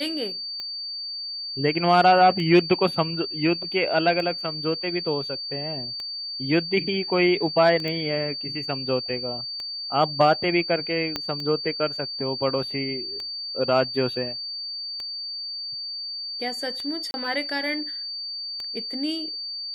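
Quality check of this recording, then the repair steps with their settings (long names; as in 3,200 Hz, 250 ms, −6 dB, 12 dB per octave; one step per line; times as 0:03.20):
scratch tick 33 1/3 rpm −20 dBFS
whistle 4,600 Hz −30 dBFS
0:07.88: click −17 dBFS
0:11.16: click −12 dBFS
0:17.11–0:17.14: drop-out 30 ms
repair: click removal
notch filter 4,600 Hz, Q 30
repair the gap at 0:17.11, 30 ms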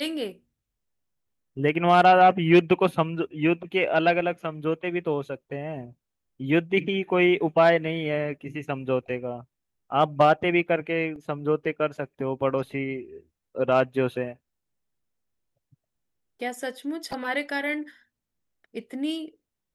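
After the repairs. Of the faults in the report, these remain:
0:11.16: click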